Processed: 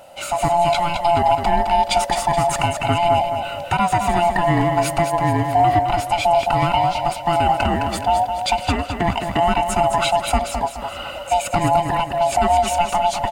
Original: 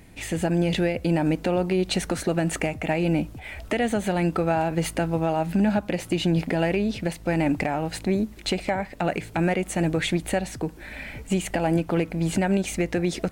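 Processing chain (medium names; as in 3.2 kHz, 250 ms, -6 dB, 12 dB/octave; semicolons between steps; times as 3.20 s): split-band scrambler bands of 500 Hz; feedback delay 212 ms, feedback 40%, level -7 dB; trim +5.5 dB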